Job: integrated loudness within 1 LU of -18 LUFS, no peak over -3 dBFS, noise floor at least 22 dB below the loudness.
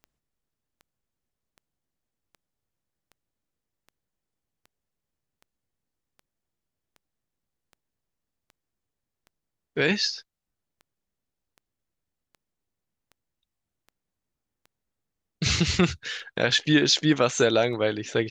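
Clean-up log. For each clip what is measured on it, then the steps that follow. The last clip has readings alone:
clicks 24; loudness -23.5 LUFS; peak -7.5 dBFS; loudness target -18.0 LUFS
-> de-click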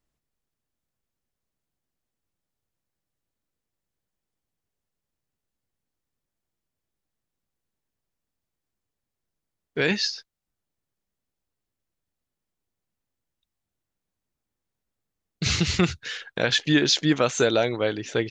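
clicks 0; loudness -23.5 LUFS; peak -7.5 dBFS; loudness target -18.0 LUFS
-> gain +5.5 dB; limiter -3 dBFS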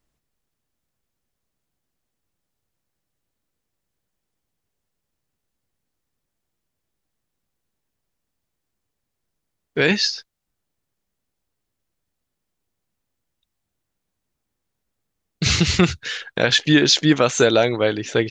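loudness -18.0 LUFS; peak -3.0 dBFS; noise floor -80 dBFS

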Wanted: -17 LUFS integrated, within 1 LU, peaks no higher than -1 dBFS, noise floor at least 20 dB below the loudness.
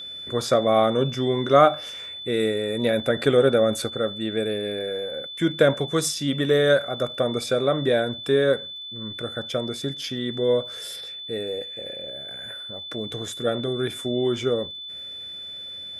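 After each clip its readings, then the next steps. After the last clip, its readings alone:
ticks 27/s; steady tone 3500 Hz; tone level -34 dBFS; loudness -24.0 LUFS; peak -3.0 dBFS; loudness target -17.0 LUFS
-> de-click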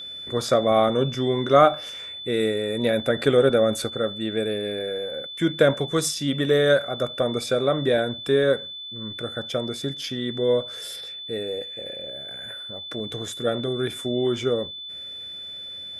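ticks 0.063/s; steady tone 3500 Hz; tone level -34 dBFS
-> notch 3500 Hz, Q 30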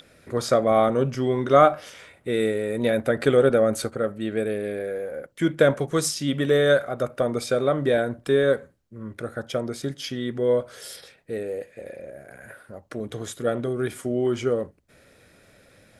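steady tone none; loudness -23.5 LUFS; peak -3.0 dBFS; loudness target -17.0 LUFS
-> gain +6.5 dB; limiter -1 dBFS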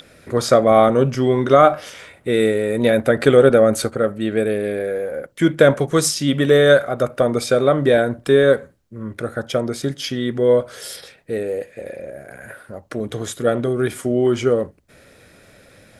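loudness -17.5 LUFS; peak -1.0 dBFS; noise floor -50 dBFS

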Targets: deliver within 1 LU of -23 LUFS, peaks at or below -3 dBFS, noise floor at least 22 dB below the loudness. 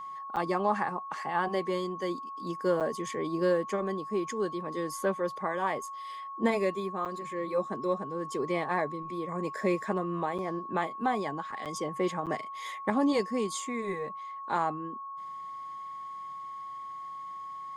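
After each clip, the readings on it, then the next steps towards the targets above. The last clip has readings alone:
dropouts 6; longest dropout 7.6 ms; steady tone 1100 Hz; tone level -38 dBFS; loudness -32.5 LUFS; peak -13.5 dBFS; loudness target -23.0 LUFS
-> interpolate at 0.36/2.8/7.05/10.38/11.65/12.26, 7.6 ms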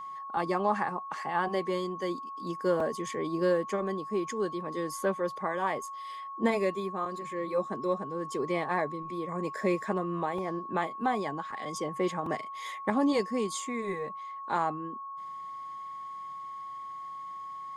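dropouts 0; steady tone 1100 Hz; tone level -38 dBFS
-> notch 1100 Hz, Q 30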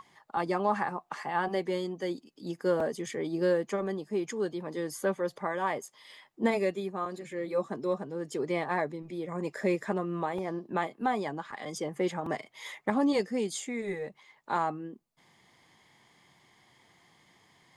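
steady tone none; loudness -32.5 LUFS; peak -14.0 dBFS; loudness target -23.0 LUFS
-> gain +9.5 dB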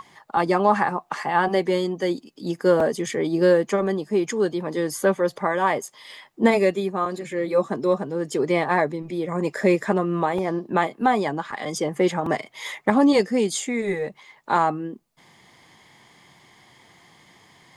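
loudness -23.0 LUFS; peak -4.5 dBFS; noise floor -56 dBFS

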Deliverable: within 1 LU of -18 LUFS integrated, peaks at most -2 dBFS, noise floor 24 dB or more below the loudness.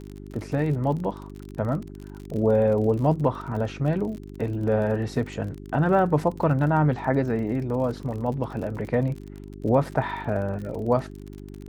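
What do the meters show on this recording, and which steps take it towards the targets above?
ticks 38/s; hum 50 Hz; harmonics up to 400 Hz; hum level -38 dBFS; loudness -25.5 LUFS; peak -7.5 dBFS; loudness target -18.0 LUFS
-> de-click; de-hum 50 Hz, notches 8; gain +7.5 dB; limiter -2 dBFS

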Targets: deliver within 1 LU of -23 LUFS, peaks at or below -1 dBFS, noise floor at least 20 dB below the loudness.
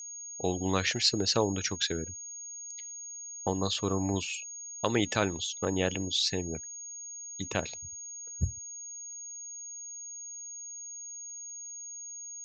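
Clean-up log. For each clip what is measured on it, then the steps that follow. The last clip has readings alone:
ticks 30/s; steady tone 6600 Hz; tone level -40 dBFS; loudness -32.5 LUFS; peak -9.5 dBFS; loudness target -23.0 LUFS
-> de-click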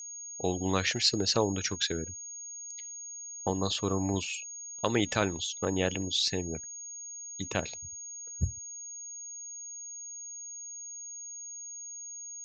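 ticks 0/s; steady tone 6600 Hz; tone level -40 dBFS
-> notch 6600 Hz, Q 30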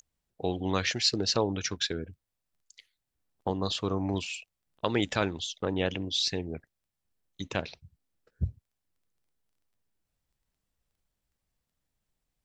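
steady tone none; loudness -30.5 LUFS; peak -9.5 dBFS; loudness target -23.0 LUFS
-> gain +7.5 dB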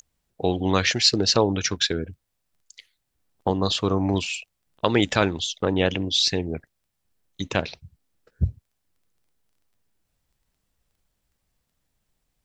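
loudness -23.0 LUFS; peak -2.0 dBFS; noise floor -77 dBFS

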